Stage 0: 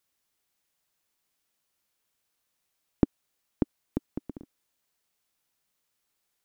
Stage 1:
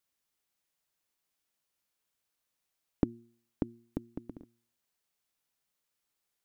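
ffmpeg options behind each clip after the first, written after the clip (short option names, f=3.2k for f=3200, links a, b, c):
-af "bandreject=f=116.8:t=h:w=4,bandreject=f=233.6:t=h:w=4,bandreject=f=350.4:t=h:w=4,volume=-5dB"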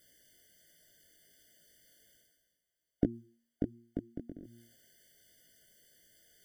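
-af "areverse,acompressor=mode=upward:threshold=-43dB:ratio=2.5,areverse,flanger=delay=17.5:depth=4.1:speed=1.3,afftfilt=real='re*eq(mod(floor(b*sr/1024/720),2),0)':imag='im*eq(mod(floor(b*sr/1024/720),2),0)':win_size=1024:overlap=0.75,volume=3dB"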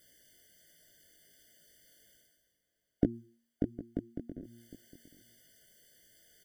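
-filter_complex "[0:a]asplit=2[a][b];[b]adelay=758,volume=-16dB,highshelf=f=4k:g=-17.1[c];[a][c]amix=inputs=2:normalize=0,volume=1.5dB"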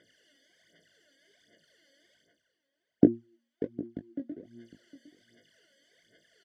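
-filter_complex "[0:a]aphaser=in_gain=1:out_gain=1:delay=3.7:decay=0.74:speed=1.3:type=sinusoidal,highpass=190,lowpass=3.8k,asplit=2[a][b];[b]adelay=20,volume=-11dB[c];[a][c]amix=inputs=2:normalize=0"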